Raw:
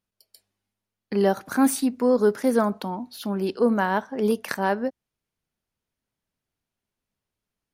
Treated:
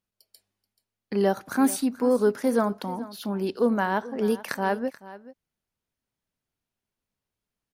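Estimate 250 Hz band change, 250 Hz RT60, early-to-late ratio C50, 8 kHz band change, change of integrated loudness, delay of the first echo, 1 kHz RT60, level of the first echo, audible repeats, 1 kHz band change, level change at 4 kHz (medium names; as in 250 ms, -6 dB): -2.0 dB, no reverb, no reverb, -2.0 dB, -2.0 dB, 432 ms, no reverb, -17.5 dB, 1, -2.0 dB, -2.0 dB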